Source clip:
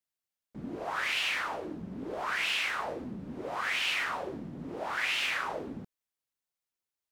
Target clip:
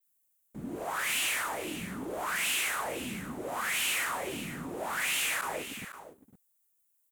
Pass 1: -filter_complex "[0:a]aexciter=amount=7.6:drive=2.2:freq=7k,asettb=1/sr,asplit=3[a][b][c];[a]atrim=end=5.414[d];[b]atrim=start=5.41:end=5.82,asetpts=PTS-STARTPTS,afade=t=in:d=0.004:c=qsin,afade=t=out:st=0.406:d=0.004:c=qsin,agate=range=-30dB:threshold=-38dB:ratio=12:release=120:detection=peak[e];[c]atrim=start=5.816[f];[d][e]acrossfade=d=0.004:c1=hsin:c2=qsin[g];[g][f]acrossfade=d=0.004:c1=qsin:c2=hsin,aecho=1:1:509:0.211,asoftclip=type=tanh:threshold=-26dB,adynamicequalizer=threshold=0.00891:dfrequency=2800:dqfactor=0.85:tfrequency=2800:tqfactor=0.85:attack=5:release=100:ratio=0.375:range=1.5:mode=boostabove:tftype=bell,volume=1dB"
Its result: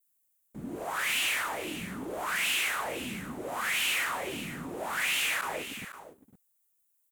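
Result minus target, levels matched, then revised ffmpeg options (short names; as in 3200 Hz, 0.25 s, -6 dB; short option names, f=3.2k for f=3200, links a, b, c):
8000 Hz band -3.0 dB
-filter_complex "[0:a]aexciter=amount=7.6:drive=2.2:freq=7k,asettb=1/sr,asplit=3[a][b][c];[a]atrim=end=5.414[d];[b]atrim=start=5.41:end=5.82,asetpts=PTS-STARTPTS,afade=t=in:d=0.004:c=qsin,afade=t=out:st=0.406:d=0.004:c=qsin,agate=range=-30dB:threshold=-38dB:ratio=12:release=120:detection=peak[e];[c]atrim=start=5.816[f];[d][e]acrossfade=d=0.004:c1=hsin:c2=qsin[g];[g][f]acrossfade=d=0.004:c1=qsin:c2=hsin,aecho=1:1:509:0.211,asoftclip=type=tanh:threshold=-26dB,adynamicequalizer=threshold=0.00891:dfrequency=9100:dqfactor=0.85:tfrequency=9100:tqfactor=0.85:attack=5:release=100:ratio=0.375:range=1.5:mode=boostabove:tftype=bell,volume=1dB"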